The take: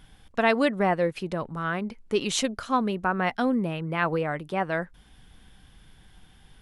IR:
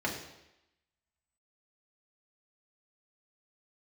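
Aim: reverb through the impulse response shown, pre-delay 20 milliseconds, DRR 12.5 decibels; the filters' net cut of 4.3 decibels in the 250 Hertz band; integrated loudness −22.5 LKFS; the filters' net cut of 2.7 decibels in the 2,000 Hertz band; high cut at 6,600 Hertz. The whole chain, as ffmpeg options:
-filter_complex "[0:a]lowpass=6600,equalizer=frequency=250:width_type=o:gain=-5.5,equalizer=frequency=2000:width_type=o:gain=-3.5,asplit=2[link_01][link_02];[1:a]atrim=start_sample=2205,adelay=20[link_03];[link_02][link_03]afir=irnorm=-1:irlink=0,volume=-20dB[link_04];[link_01][link_04]amix=inputs=2:normalize=0,volume=6dB"

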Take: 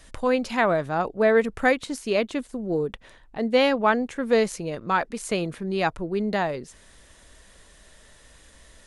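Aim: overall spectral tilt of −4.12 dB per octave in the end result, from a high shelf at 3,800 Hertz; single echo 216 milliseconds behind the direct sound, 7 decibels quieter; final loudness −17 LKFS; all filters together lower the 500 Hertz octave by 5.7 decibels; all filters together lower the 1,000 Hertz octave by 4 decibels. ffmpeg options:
ffmpeg -i in.wav -af "equalizer=frequency=500:width_type=o:gain=-6,equalizer=frequency=1000:width_type=o:gain=-3.5,highshelf=frequency=3800:gain=4.5,aecho=1:1:216:0.447,volume=9.5dB" out.wav

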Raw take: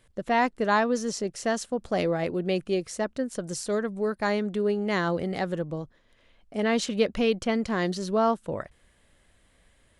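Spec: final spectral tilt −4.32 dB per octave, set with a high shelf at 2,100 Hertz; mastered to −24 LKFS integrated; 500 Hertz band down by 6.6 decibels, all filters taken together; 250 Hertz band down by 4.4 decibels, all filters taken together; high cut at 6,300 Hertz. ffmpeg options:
ffmpeg -i in.wav -af "lowpass=6300,equalizer=frequency=250:width_type=o:gain=-4,equalizer=frequency=500:width_type=o:gain=-7,highshelf=frequency=2100:gain=-5.5,volume=8.5dB" out.wav

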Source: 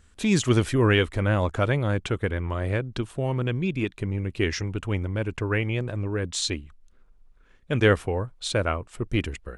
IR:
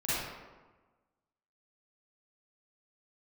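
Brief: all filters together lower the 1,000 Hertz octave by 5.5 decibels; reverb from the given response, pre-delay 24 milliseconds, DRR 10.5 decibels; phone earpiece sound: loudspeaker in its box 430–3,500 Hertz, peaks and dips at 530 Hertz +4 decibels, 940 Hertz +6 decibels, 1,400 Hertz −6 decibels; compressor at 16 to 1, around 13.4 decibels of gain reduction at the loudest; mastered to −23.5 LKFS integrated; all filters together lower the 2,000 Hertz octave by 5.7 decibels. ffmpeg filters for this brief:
-filter_complex "[0:a]equalizer=frequency=1000:width_type=o:gain=-7.5,equalizer=frequency=2000:width_type=o:gain=-3,acompressor=threshold=-29dB:ratio=16,asplit=2[link_01][link_02];[1:a]atrim=start_sample=2205,adelay=24[link_03];[link_02][link_03]afir=irnorm=-1:irlink=0,volume=-19dB[link_04];[link_01][link_04]amix=inputs=2:normalize=0,highpass=430,equalizer=frequency=530:width_type=q:width=4:gain=4,equalizer=frequency=940:width_type=q:width=4:gain=6,equalizer=frequency=1400:width_type=q:width=4:gain=-6,lowpass=frequency=3500:width=0.5412,lowpass=frequency=3500:width=1.3066,volume=17dB"

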